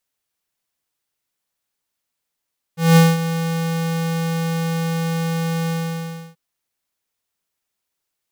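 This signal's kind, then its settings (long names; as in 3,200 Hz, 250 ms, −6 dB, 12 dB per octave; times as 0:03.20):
note with an ADSR envelope square 165 Hz, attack 194 ms, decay 204 ms, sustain −12.5 dB, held 2.92 s, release 664 ms −9 dBFS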